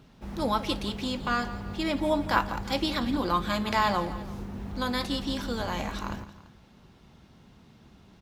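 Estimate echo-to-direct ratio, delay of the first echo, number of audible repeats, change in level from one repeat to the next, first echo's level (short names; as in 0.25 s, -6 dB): -14.0 dB, 0.169 s, 2, -5.5 dB, -15.0 dB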